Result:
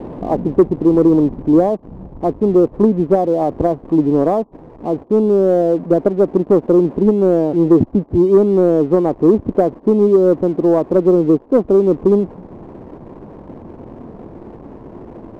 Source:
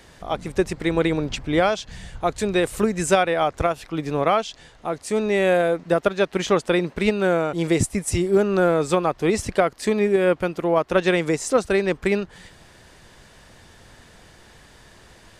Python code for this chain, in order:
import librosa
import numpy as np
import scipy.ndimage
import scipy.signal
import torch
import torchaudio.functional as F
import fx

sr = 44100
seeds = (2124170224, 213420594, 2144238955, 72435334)

p1 = x + 0.5 * 10.0 ** (-32.5 / 20.0) * np.sign(x)
p2 = scipy.signal.sosfilt(scipy.signal.butter(12, 1100.0, 'lowpass', fs=sr, output='sos'), p1)
p3 = fx.rider(p2, sr, range_db=10, speed_s=0.5)
p4 = p2 + (p3 * librosa.db_to_amplitude(1.5))
p5 = fx.peak_eq(p4, sr, hz=290.0, db=15.0, octaves=1.8)
p6 = fx.leveller(p5, sr, passes=1)
y = p6 * librosa.db_to_amplitude(-13.0)